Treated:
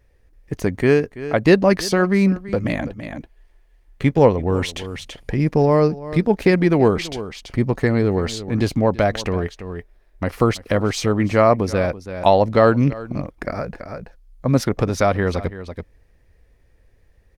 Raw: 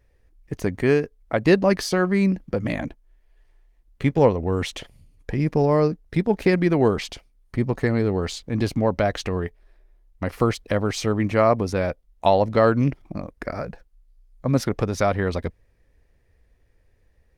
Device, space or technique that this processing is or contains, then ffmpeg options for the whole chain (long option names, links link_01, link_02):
ducked delay: -filter_complex "[0:a]asplit=3[link_01][link_02][link_03];[link_02]adelay=332,volume=-4.5dB[link_04];[link_03]apad=whole_len=780798[link_05];[link_04][link_05]sidechaincompress=threshold=-36dB:ratio=4:attack=25:release=409[link_06];[link_01][link_06]amix=inputs=2:normalize=0,volume=3.5dB"